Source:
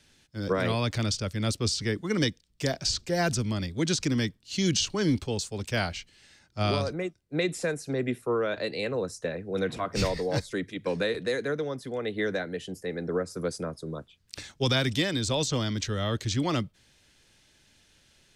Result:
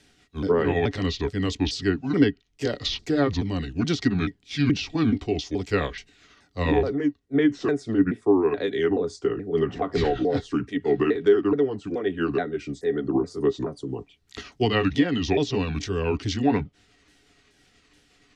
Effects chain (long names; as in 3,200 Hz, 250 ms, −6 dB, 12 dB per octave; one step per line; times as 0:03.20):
pitch shifter swept by a sawtooth −6.5 semitones, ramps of 427 ms
hollow resonant body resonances 290/410/720/1,900 Hz, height 12 dB, ringing for 75 ms
treble cut that deepens with the level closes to 2,400 Hz, closed at −18 dBFS
level +1.5 dB